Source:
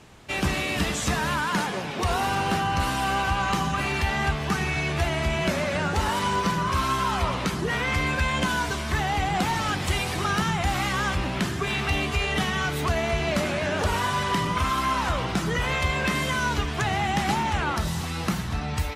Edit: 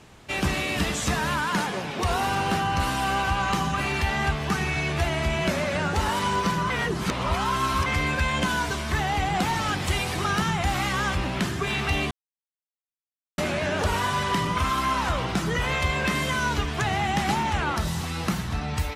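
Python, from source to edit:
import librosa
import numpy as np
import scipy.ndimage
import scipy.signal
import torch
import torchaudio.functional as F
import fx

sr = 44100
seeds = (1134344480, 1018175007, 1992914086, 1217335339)

y = fx.edit(x, sr, fx.reverse_span(start_s=6.7, length_s=1.16),
    fx.silence(start_s=12.11, length_s=1.27), tone=tone)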